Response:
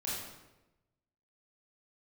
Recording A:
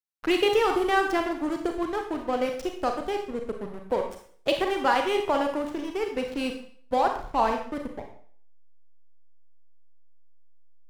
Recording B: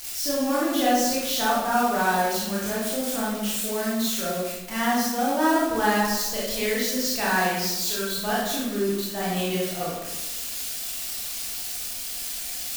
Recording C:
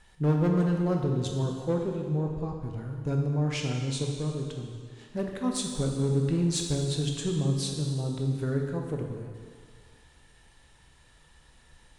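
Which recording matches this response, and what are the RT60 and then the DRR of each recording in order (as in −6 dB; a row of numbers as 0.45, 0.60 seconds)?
B; 0.50, 1.0, 1.9 seconds; 3.5, −7.5, 1.5 decibels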